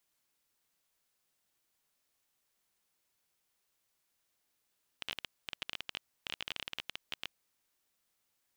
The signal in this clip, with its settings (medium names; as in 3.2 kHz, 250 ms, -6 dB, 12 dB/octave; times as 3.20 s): random clicks 18 per s -20 dBFS 2.24 s